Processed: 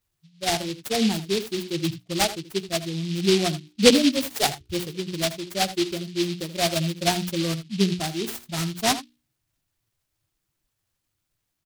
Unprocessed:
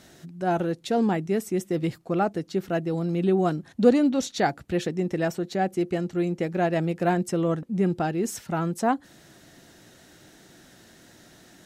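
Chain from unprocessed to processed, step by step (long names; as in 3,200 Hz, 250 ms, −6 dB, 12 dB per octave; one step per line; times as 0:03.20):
spectral dynamics exaggerated over time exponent 2
0:03.90–0:04.43: Butterworth high-pass 220 Hz 96 dB per octave
mains-hum notches 60/120/180/240/300/360/420 Hz
single-tap delay 80 ms −14 dB
short delay modulated by noise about 3,500 Hz, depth 0.18 ms
level +5 dB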